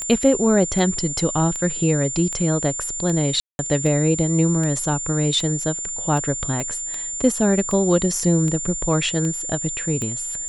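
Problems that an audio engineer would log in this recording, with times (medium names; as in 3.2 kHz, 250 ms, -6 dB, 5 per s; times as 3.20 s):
tick 78 rpm -15 dBFS
whine 7.2 kHz -26 dBFS
3.40–3.59 s: dropout 191 ms
6.60 s: pop -14 dBFS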